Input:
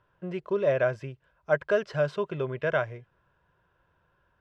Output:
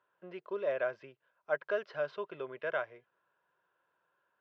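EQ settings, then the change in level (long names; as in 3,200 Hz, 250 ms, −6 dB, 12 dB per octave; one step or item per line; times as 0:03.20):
high-pass filter 350 Hz 12 dB per octave
low-pass filter 4,800 Hz 24 dB per octave
parametric band 1,300 Hz +2 dB
−8.0 dB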